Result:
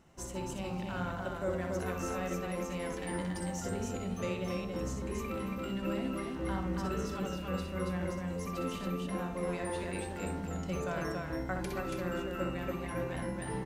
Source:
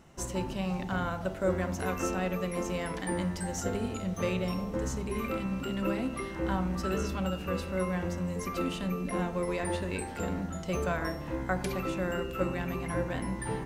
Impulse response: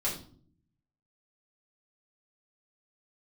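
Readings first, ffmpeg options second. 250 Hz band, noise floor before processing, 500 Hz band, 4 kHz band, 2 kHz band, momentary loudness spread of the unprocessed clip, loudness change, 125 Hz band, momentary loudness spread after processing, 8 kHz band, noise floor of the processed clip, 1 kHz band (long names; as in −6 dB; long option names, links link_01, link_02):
−3.5 dB, −39 dBFS, −3.5 dB, −4.0 dB, −4.0 dB, 3 LU, −4.0 dB, −4.0 dB, 3 LU, −4.0 dB, −40 dBFS, −4.0 dB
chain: -af "aecho=1:1:61.22|279.9:0.501|0.708,volume=-6.5dB"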